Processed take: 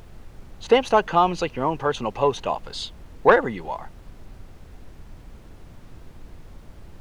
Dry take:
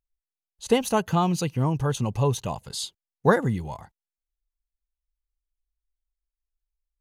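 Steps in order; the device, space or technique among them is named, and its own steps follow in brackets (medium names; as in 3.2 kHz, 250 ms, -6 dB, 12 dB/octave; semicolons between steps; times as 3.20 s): aircraft cabin announcement (band-pass 410–3000 Hz; saturation -11 dBFS, distortion -19 dB; brown noise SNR 15 dB); trim +8 dB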